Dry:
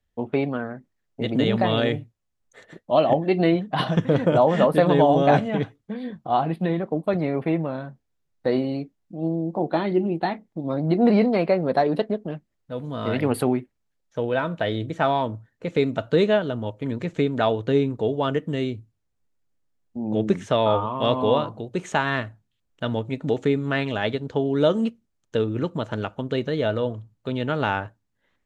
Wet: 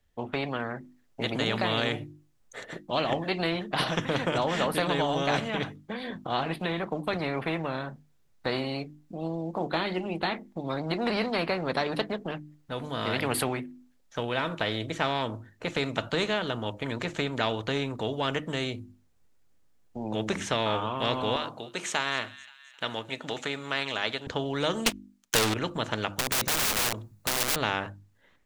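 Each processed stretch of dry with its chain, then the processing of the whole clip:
21.36–24.27 s: high-pass 1.1 kHz 6 dB/octave + feedback echo behind a high-pass 263 ms, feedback 54%, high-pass 2.7 kHz, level -21 dB
24.86–25.54 s: tilt shelf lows -8 dB, about 710 Hz + waveshaping leveller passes 5
26.18–27.56 s: treble shelf 9 kHz +10 dB + band-stop 3.1 kHz, Q 8.5 + integer overflow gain 25 dB
whole clip: hum notches 50/100/150/200/250/300/350 Hz; level rider gain up to 3.5 dB; spectrum-flattening compressor 2:1; trim -5 dB

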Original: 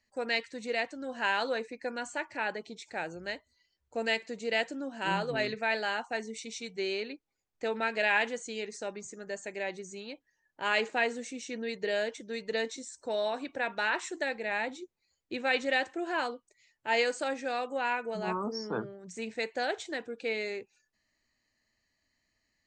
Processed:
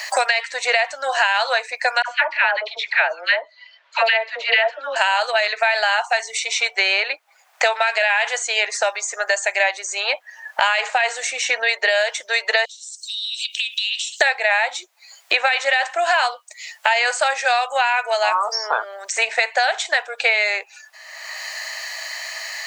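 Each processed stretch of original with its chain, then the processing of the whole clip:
2.02–4.96 s: low-pass 3.6 kHz 24 dB/octave + band-stop 770 Hz, Q 6.4 + phase dispersion lows, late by 79 ms, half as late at 1 kHz
12.65–14.21 s: steep high-pass 2.9 kHz 72 dB/octave + compression 5:1, threshold -58 dBFS
whole clip: elliptic high-pass 660 Hz, stop band 80 dB; loudness maximiser +25.5 dB; three bands compressed up and down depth 100%; trim -6.5 dB

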